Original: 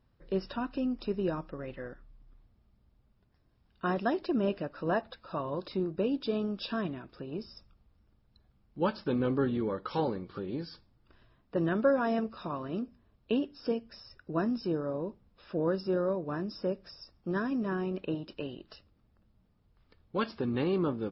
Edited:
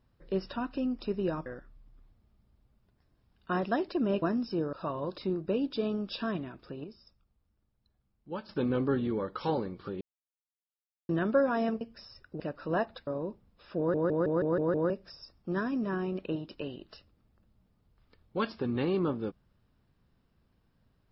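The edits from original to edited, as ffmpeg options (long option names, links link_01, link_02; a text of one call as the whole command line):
ffmpeg -i in.wav -filter_complex "[0:a]asplit=18[link_01][link_02][link_03][link_04][link_05][link_06][link_07][link_08][link_09][link_10][link_11][link_12][link_13][link_14][link_15][link_16][link_17][link_18];[link_01]atrim=end=1.462[link_19];[link_02]atrim=start=1.798:end=4.562[link_20];[link_03]atrim=start=14.348:end=14.862[link_21];[link_04]atrim=start=5.228:end=7.342[link_22];[link_05]atrim=start=7.338:end=8.992,asetpts=PTS-STARTPTS,volume=-9dB[link_23];[link_06]atrim=start=8.988:end=10.51,asetpts=PTS-STARTPTS,afade=type=out:start_time=1.518:duration=0.004:curve=hsin[link_24];[link_07]atrim=start=10.51:end=11.59,asetpts=PTS-STARTPTS,volume=0[link_25];[link_08]atrim=start=11.59:end=12.312,asetpts=PTS-STARTPTS,afade=type=in:duration=0.004:curve=hsin[link_26];[link_09]atrim=start=13.758:end=14.352[link_27];[link_10]atrim=start=4.558:end=5.232[link_28];[link_11]atrim=start=14.858:end=15.732[link_29];[link_12]atrim=start=15.568:end=15.732[link_30];[link_13]atrim=start=15.568:end=15.732[link_31];[link_14]atrim=start=15.568:end=15.732[link_32];[link_15]atrim=start=15.568:end=15.732[link_33];[link_16]atrim=start=15.568:end=15.732[link_34];[link_17]atrim=start=15.568:end=15.732[link_35];[link_18]atrim=start=16.688[link_36];[link_19][link_20]acrossfade=duration=0.004:curve1=hsin:curve2=hsin[link_37];[link_37][link_21]acrossfade=duration=0.004:curve1=hsin:curve2=hsin[link_38];[link_38][link_22]acrossfade=duration=0.004:curve1=hsin:curve2=hsin[link_39];[link_39][link_23]acrossfade=duration=0.004:curve1=hsin:curve2=hsin[link_40];[link_24][link_25][link_26]concat=n=3:v=0:a=1[link_41];[link_40][link_41]acrossfade=duration=0.004:curve1=hsin:curve2=hsin[link_42];[link_42][link_27]acrossfade=duration=0.004:curve1=hsin:curve2=hsin[link_43];[link_43][link_28]acrossfade=duration=0.004:curve1=hsin:curve2=hsin[link_44];[link_44][link_29]acrossfade=duration=0.004:curve1=hsin:curve2=hsin[link_45];[link_45][link_30]acrossfade=duration=0.004:curve1=hsin:curve2=hsin[link_46];[link_46][link_31]acrossfade=duration=0.004:curve1=hsin:curve2=hsin[link_47];[link_47][link_32]acrossfade=duration=0.004:curve1=hsin:curve2=hsin[link_48];[link_48][link_33]acrossfade=duration=0.004:curve1=hsin:curve2=hsin[link_49];[link_49][link_34]acrossfade=duration=0.004:curve1=hsin:curve2=hsin[link_50];[link_50][link_35]acrossfade=duration=0.004:curve1=hsin:curve2=hsin[link_51];[link_51][link_36]acrossfade=duration=0.004:curve1=hsin:curve2=hsin" out.wav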